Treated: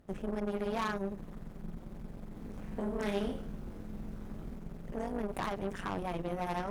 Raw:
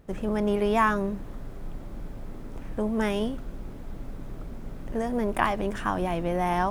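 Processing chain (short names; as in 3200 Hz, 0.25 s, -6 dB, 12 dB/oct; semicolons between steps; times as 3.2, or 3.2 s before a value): AM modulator 190 Hz, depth 85%; tube stage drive 27 dB, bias 0.5; 2.34–4.56 reverse bouncing-ball echo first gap 20 ms, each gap 1.4×, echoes 5; gain -1.5 dB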